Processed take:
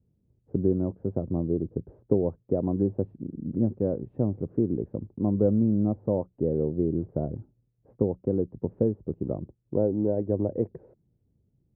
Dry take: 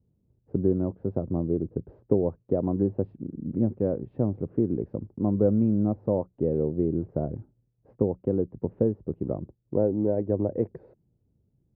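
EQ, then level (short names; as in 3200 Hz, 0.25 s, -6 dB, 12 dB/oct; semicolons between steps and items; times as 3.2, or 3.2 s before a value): LPF 1000 Hz 6 dB/oct; 0.0 dB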